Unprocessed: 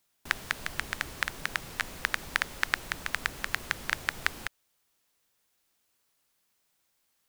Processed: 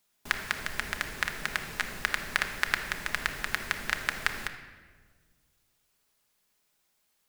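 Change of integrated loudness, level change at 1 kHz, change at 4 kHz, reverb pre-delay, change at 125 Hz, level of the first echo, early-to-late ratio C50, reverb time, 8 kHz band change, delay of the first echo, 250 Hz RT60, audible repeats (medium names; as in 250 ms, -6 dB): +1.0 dB, +1.0 dB, +1.0 dB, 5 ms, +0.5 dB, no echo, 8.5 dB, 1.6 s, +0.5 dB, no echo, 2.0 s, no echo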